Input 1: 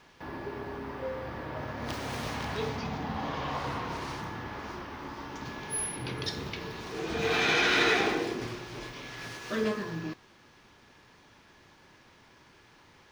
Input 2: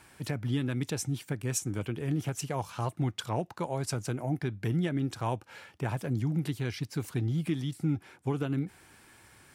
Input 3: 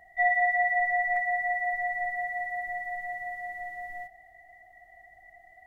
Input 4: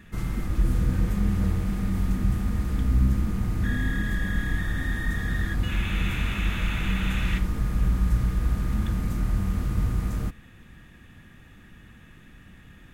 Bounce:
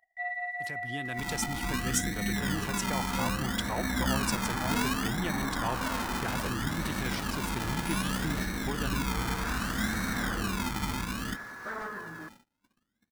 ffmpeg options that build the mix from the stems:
-filter_complex "[0:a]acrusher=bits=7:mix=0:aa=0.000001,aeval=exprs='0.0376*(abs(mod(val(0)/0.0376+3,4)-2)-1)':c=same,highshelf=f=2100:t=q:w=3:g=-10,adelay=2150,volume=0.891[s0];[1:a]dynaudnorm=f=130:g=9:m=2.24,agate=range=0.1:threshold=0.00316:ratio=16:detection=peak,adelay=400,volume=0.596[s1];[2:a]acompressor=mode=upward:threshold=0.0224:ratio=2.5,aeval=exprs='0.188*(cos(1*acos(clip(val(0)/0.188,-1,1)))-cos(1*PI/2))+0.00596*(cos(2*acos(clip(val(0)/0.188,-1,1)))-cos(2*PI/2))':c=same,volume=0.355[s2];[3:a]equalizer=f=250:w=1.3:g=15,dynaudnorm=f=420:g=13:m=1.41,acrusher=samples=31:mix=1:aa=0.000001:lfo=1:lforange=18.6:lforate=0.64,adelay=1050,volume=0.531[s3];[s0][s1][s2][s3]amix=inputs=4:normalize=0,lowshelf=f=490:g=-11.5,agate=range=0.0501:threshold=0.00282:ratio=16:detection=peak"

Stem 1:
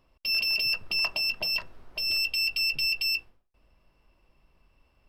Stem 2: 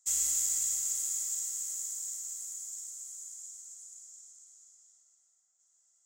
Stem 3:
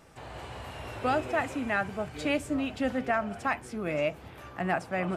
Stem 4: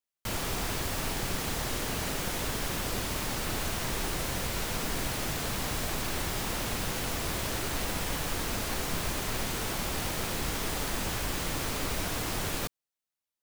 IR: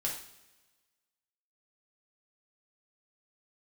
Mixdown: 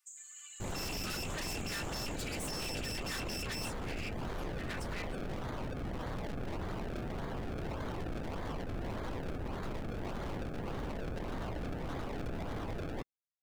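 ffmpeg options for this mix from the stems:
-filter_complex "[0:a]asoftclip=type=tanh:threshold=0.0282,adelay=500,volume=0.398[s0];[1:a]acompressor=threshold=0.0224:ratio=6,volume=0.224[s1];[2:a]highpass=f=1100:w=0.5412,highpass=f=1100:w=1.3066,aderivative,aecho=1:1:3.4:0.92,volume=1.26[s2];[3:a]lowpass=f=1200:p=1,acrusher=samples=31:mix=1:aa=0.000001:lfo=1:lforange=31:lforate=1.7,adelay=350,volume=0.841[s3];[s0][s1][s2][s3]amix=inputs=4:normalize=0,afftdn=nr=16:nf=-48,aeval=exprs='0.0224*(abs(mod(val(0)/0.0224+3,4)-2)-1)':c=same"

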